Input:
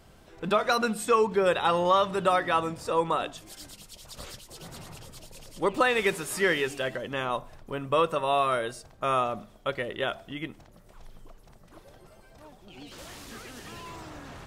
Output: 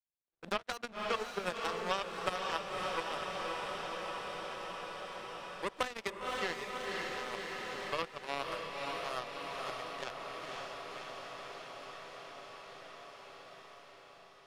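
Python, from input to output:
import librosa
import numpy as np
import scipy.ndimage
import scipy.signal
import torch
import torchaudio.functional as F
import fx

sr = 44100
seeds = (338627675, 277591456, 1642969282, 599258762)

y = fx.power_curve(x, sr, exponent=3.0)
y = fx.echo_diffused(y, sr, ms=545, feedback_pct=61, wet_db=-4.5)
y = fx.band_squash(y, sr, depth_pct=70)
y = y * librosa.db_to_amplitude(-1.0)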